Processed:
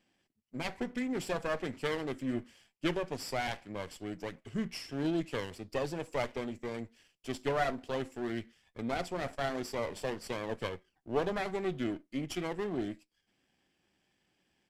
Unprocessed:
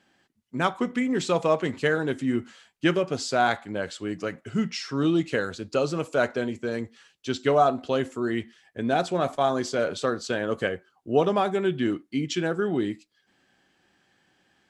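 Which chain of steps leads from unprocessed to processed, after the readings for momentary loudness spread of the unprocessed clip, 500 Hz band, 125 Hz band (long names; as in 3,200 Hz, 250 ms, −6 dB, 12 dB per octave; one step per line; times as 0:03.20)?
9 LU, −10.5 dB, −9.0 dB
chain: lower of the sound and its delayed copy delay 0.38 ms
downsampling to 32,000 Hz
level −8.5 dB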